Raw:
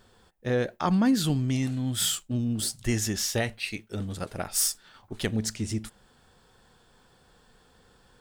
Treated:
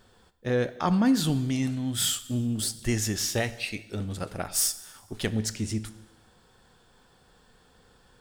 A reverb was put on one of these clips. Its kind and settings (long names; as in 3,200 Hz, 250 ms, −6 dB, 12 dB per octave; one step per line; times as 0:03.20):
dense smooth reverb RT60 1.1 s, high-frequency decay 1×, DRR 13.5 dB